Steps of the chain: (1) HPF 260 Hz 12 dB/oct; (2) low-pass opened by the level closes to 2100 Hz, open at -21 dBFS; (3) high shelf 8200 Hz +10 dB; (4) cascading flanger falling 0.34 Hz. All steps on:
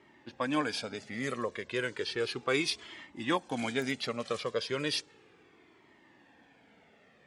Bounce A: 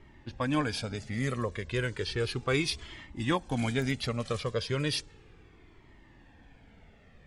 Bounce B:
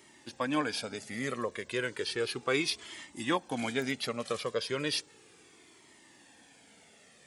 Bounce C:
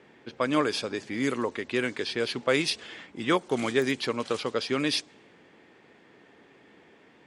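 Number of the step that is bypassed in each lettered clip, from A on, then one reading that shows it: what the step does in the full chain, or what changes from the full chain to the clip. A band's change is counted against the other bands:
1, loudness change +1.5 LU; 2, 8 kHz band +2.5 dB; 4, 250 Hz band +2.0 dB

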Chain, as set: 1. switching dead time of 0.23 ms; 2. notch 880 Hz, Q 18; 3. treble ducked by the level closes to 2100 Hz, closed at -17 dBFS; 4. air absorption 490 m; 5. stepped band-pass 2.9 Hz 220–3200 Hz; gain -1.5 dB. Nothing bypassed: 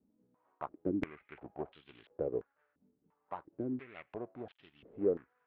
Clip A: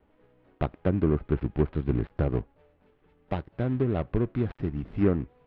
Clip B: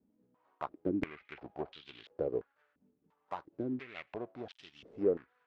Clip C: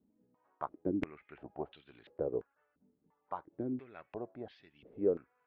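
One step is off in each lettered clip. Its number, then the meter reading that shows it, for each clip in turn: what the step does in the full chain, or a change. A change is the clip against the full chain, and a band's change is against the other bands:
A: 5, 125 Hz band +15.0 dB; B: 4, 2 kHz band +3.0 dB; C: 1, distortion -16 dB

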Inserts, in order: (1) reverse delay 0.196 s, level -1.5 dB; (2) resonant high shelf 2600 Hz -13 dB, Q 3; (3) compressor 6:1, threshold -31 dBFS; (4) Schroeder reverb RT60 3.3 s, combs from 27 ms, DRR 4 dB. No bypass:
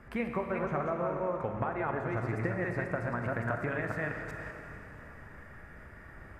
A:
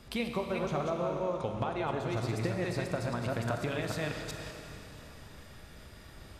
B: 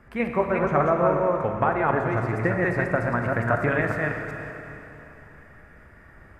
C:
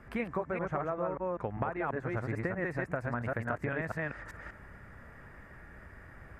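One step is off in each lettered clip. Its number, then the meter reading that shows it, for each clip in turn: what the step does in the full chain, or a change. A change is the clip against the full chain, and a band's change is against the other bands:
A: 2, 2 kHz band -4.5 dB; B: 3, crest factor change +2.0 dB; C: 4, crest factor change +1.5 dB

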